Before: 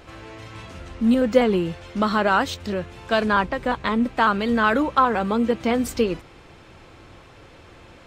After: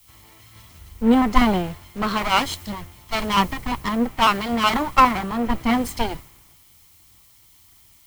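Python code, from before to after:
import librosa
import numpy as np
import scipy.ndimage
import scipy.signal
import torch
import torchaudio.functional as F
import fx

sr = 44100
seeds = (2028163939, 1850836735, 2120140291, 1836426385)

y = fx.lower_of_two(x, sr, delay_ms=0.96)
y = fx.dmg_noise_colour(y, sr, seeds[0], colour='blue', level_db=-48.0)
y = fx.band_widen(y, sr, depth_pct=70)
y = F.gain(torch.from_numpy(y), 2.0).numpy()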